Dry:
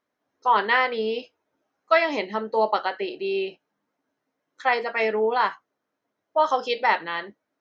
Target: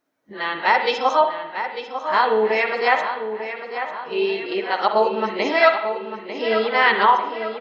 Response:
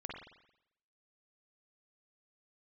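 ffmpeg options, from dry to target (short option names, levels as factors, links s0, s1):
-filter_complex "[0:a]areverse,asplit=2[s0][s1];[s1]adelay=897,lowpass=f=3900:p=1,volume=0.355,asplit=2[s2][s3];[s3]adelay=897,lowpass=f=3900:p=1,volume=0.54,asplit=2[s4][s5];[s5]adelay=897,lowpass=f=3900:p=1,volume=0.54,asplit=2[s6][s7];[s7]adelay=897,lowpass=f=3900:p=1,volume=0.54,asplit=2[s8][s9];[s9]adelay=897,lowpass=f=3900:p=1,volume=0.54,asplit=2[s10][s11];[s11]adelay=897,lowpass=f=3900:p=1,volume=0.54[s12];[s0][s2][s4][s6][s8][s10][s12]amix=inputs=7:normalize=0,asplit=2[s13][s14];[1:a]atrim=start_sample=2205,highshelf=f=4700:g=11.5[s15];[s14][s15]afir=irnorm=-1:irlink=0,volume=0.891[s16];[s13][s16]amix=inputs=2:normalize=0"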